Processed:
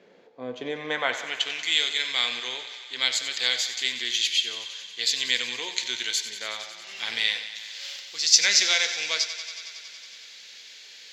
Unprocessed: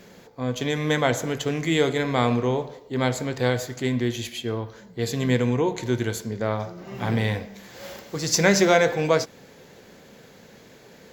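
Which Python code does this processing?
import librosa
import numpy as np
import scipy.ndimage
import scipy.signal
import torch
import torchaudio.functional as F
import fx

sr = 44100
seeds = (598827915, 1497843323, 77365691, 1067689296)

y = fx.filter_sweep_bandpass(x, sr, from_hz=500.0, to_hz=4600.0, start_s=0.69, end_s=1.66, q=0.99)
y = fx.echo_thinned(y, sr, ms=92, feedback_pct=80, hz=350.0, wet_db=-12.5)
y = fx.rider(y, sr, range_db=4, speed_s=2.0)
y = fx.weighting(y, sr, curve='D')
y = y * librosa.db_to_amplitude(-1.5)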